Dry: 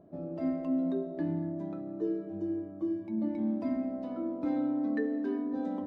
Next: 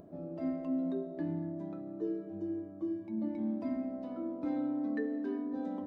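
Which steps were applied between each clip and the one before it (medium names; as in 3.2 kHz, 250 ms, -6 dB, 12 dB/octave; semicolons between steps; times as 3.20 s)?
upward compressor, threshold -43 dBFS; trim -3.5 dB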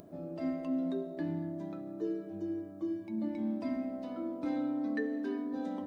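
treble shelf 2 kHz +11.5 dB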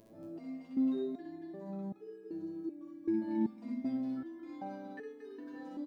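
loudspeakers at several distances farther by 21 m 0 dB, 79 m -1 dB; resonator arpeggio 2.6 Hz 110–420 Hz; trim +3 dB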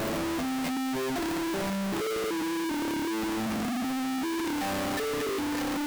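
one-bit comparator; trim +8.5 dB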